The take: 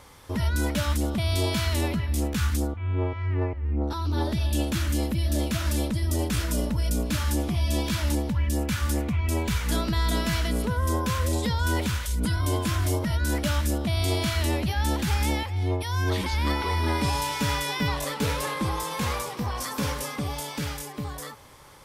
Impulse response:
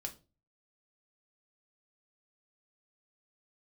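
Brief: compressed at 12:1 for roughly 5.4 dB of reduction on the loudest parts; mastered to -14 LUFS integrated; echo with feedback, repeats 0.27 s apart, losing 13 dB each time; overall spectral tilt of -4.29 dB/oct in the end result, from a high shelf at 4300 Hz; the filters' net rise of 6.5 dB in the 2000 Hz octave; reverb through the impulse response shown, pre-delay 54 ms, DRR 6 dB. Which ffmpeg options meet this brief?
-filter_complex "[0:a]equalizer=f=2k:t=o:g=7,highshelf=f=4.3k:g=5.5,acompressor=threshold=-25dB:ratio=12,aecho=1:1:270|540|810:0.224|0.0493|0.0108,asplit=2[a][b];[1:a]atrim=start_sample=2205,adelay=54[c];[b][c]afir=irnorm=-1:irlink=0,volume=-4dB[d];[a][d]amix=inputs=2:normalize=0,volume=14dB"

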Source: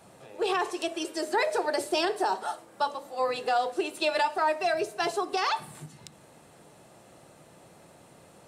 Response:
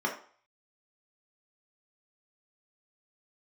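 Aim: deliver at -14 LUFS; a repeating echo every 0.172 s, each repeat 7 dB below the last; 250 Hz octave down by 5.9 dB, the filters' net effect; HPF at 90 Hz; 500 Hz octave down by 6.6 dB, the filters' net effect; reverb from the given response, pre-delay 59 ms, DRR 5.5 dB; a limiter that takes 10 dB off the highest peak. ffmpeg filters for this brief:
-filter_complex "[0:a]highpass=90,equalizer=f=250:t=o:g=-4,equalizer=f=500:t=o:g=-8,alimiter=level_in=2dB:limit=-24dB:level=0:latency=1,volume=-2dB,aecho=1:1:172|344|516|688|860:0.447|0.201|0.0905|0.0407|0.0183,asplit=2[a][b];[1:a]atrim=start_sample=2205,adelay=59[c];[b][c]afir=irnorm=-1:irlink=0,volume=-14.5dB[d];[a][d]amix=inputs=2:normalize=0,volume=20dB"

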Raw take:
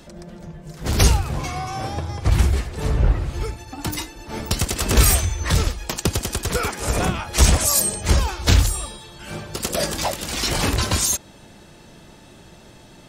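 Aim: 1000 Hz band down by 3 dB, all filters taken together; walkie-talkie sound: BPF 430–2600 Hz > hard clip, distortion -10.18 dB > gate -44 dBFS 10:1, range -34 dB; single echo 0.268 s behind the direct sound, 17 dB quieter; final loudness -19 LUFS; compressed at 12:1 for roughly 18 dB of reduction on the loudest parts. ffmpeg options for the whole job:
-af "equalizer=f=1k:t=o:g=-3.5,acompressor=threshold=-28dB:ratio=12,highpass=430,lowpass=2.6k,aecho=1:1:268:0.141,asoftclip=type=hard:threshold=-36dB,agate=range=-34dB:threshold=-44dB:ratio=10,volume=23.5dB"

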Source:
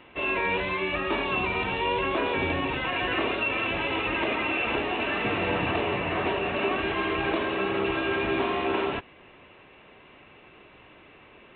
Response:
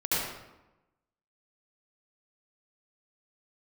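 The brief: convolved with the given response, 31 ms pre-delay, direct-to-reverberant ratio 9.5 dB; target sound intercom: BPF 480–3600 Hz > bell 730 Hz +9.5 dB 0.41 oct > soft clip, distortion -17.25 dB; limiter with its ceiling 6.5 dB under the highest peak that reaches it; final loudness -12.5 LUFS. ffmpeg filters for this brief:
-filter_complex "[0:a]alimiter=limit=-21dB:level=0:latency=1,asplit=2[a][b];[1:a]atrim=start_sample=2205,adelay=31[c];[b][c]afir=irnorm=-1:irlink=0,volume=-20dB[d];[a][d]amix=inputs=2:normalize=0,highpass=480,lowpass=3.6k,equalizer=f=730:t=o:w=0.41:g=9.5,asoftclip=threshold=-23.5dB,volume=18dB"

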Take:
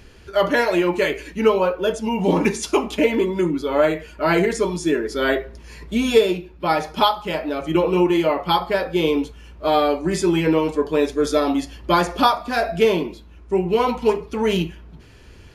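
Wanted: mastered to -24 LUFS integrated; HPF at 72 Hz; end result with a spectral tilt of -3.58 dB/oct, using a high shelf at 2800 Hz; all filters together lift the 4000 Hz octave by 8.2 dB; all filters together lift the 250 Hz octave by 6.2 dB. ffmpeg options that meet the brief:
-af "highpass=72,equalizer=f=250:t=o:g=8.5,highshelf=f=2.8k:g=6.5,equalizer=f=4k:t=o:g=5.5,volume=-7.5dB"

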